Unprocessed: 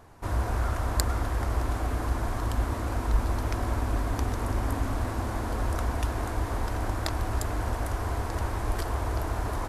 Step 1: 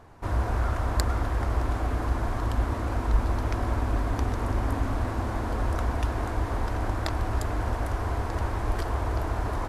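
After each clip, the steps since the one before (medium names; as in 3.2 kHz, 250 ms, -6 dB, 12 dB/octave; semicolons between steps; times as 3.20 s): treble shelf 6.2 kHz -10 dB; trim +1.5 dB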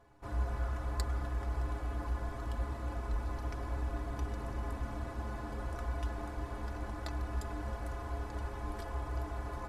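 inharmonic resonator 62 Hz, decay 0.25 s, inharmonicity 0.03; trim -4.5 dB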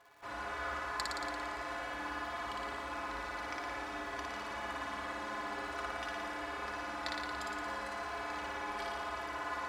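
band-pass filter 2.5 kHz, Q 0.71; crackle 130 per s -63 dBFS; flutter echo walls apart 9.8 m, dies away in 1.4 s; trim +8 dB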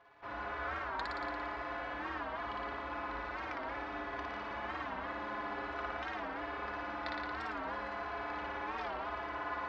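distance through air 260 m; warped record 45 rpm, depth 160 cents; trim +1.5 dB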